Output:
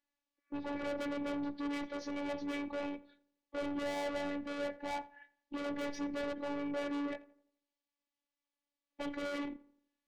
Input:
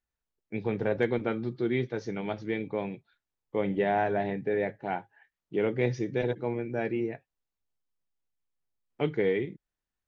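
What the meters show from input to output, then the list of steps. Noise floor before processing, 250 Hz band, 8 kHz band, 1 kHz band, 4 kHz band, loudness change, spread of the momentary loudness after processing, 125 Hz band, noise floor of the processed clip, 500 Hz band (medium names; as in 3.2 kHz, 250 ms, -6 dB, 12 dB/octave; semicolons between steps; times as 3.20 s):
under -85 dBFS, -5.5 dB, no reading, -8.0 dB, -0.5 dB, -8.5 dB, 7 LU, -22.5 dB, under -85 dBFS, -11.0 dB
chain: spectral replace 0.33–0.84 s, 1.1–2.5 kHz both; band-pass 140–5200 Hz; band-stop 1.4 kHz, Q 5.2; in parallel at 0 dB: peak limiter -26 dBFS, peak gain reduction 11 dB; on the sum: dynamic bell 800 Hz, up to +4 dB, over -35 dBFS, Q 0.85; saturation -31.5 dBFS, distortion -5 dB; on a send: filtered feedback delay 85 ms, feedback 43%, low-pass 1.9 kHz, level -18.5 dB; on the sum: robot voice 286 Hz; trim -1 dB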